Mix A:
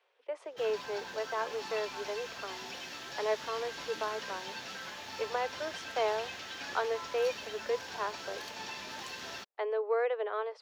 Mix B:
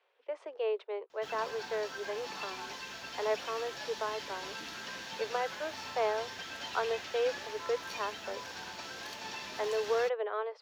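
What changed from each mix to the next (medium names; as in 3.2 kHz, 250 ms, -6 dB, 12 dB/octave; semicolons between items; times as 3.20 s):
speech: add distance through air 68 m; background: entry +0.65 s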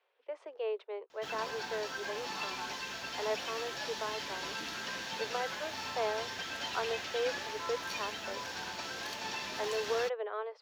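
speech -3.0 dB; background +3.0 dB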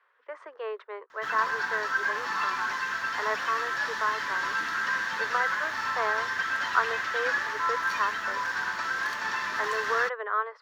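master: add high-order bell 1.4 kHz +15 dB 1.2 oct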